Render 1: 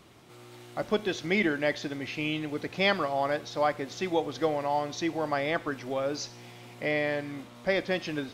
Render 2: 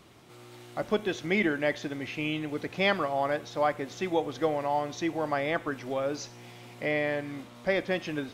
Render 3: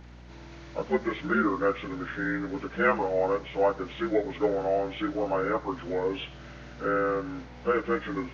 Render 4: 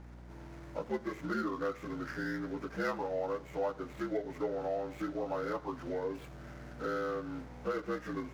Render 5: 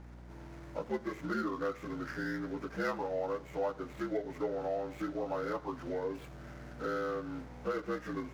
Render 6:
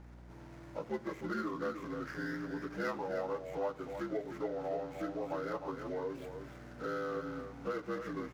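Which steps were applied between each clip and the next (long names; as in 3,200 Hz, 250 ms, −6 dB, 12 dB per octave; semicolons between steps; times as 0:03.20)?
dynamic equaliser 4,600 Hz, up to −6 dB, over −52 dBFS, Q 2
partials spread apart or drawn together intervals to 80%; low-shelf EQ 360 Hz −3.5 dB; mains hum 60 Hz, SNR 19 dB; level +4 dB
running median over 15 samples; downward compressor 2 to 1, threshold −34 dBFS, peak gain reduction 8.5 dB; level −2.5 dB
no processing that can be heard
single-tap delay 307 ms −8 dB; level −2.5 dB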